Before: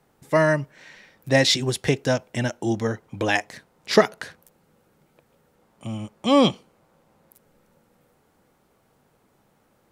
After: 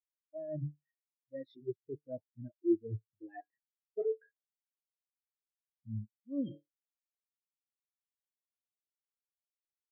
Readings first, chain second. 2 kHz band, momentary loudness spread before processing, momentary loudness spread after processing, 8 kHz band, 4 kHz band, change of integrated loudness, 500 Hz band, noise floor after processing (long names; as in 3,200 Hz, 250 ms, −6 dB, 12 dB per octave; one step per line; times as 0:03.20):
−38.5 dB, 18 LU, 17 LU, below −40 dB, below −40 dB, −17.5 dB, −17.0 dB, below −85 dBFS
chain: dynamic equaliser 340 Hz, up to +6 dB, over −35 dBFS, Q 2
tuned comb filter 110 Hz, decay 0.52 s, harmonics odd, mix 40%
hum removal 147.1 Hz, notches 7
reversed playback
downward compressor 8 to 1, threshold −38 dBFS, peak gain reduction 25.5 dB
reversed playback
every bin expanded away from the loudest bin 4 to 1
level +4.5 dB